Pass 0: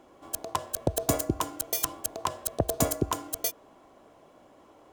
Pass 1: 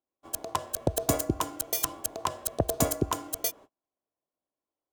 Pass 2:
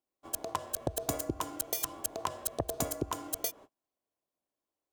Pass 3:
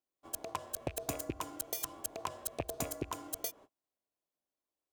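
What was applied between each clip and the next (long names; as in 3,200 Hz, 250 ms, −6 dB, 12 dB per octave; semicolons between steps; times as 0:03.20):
noise gate −47 dBFS, range −38 dB
downward compressor, threshold −29 dBFS, peak gain reduction 10 dB
loose part that buzzes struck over −43 dBFS, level −31 dBFS; level −4.5 dB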